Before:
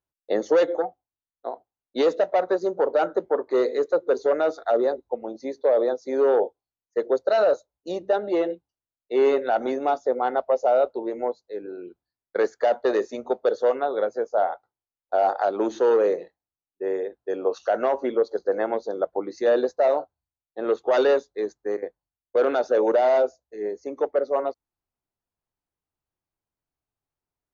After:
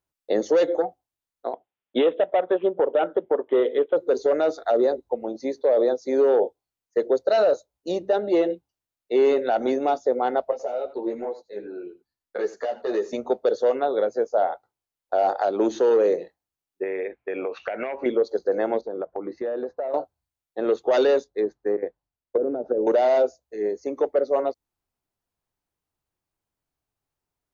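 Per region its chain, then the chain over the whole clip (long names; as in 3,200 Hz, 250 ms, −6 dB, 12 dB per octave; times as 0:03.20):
0:01.53–0:03.97: high-pass filter 170 Hz 6 dB per octave + transient designer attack +5 dB, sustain −4 dB + bad sample-rate conversion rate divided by 6×, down none, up filtered
0:10.51–0:13.13: downward compressor 4 to 1, threshold −23 dBFS + single-tap delay 84 ms −16 dB + string-ensemble chorus
0:16.83–0:18.06: downward compressor 5 to 1, threshold −29 dBFS + low-pass with resonance 2,300 Hz, resonance Q 12
0:18.81–0:19.94: low-pass filter 1,800 Hz + downward compressor 4 to 1, threshold −30 dBFS
0:21.24–0:22.87: treble cut that deepens with the level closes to 340 Hz, closed at −18 dBFS + one half of a high-frequency compander decoder only
whole clip: dynamic equaliser 1,200 Hz, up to −6 dB, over −38 dBFS, Q 0.96; brickwall limiter −16 dBFS; level +4 dB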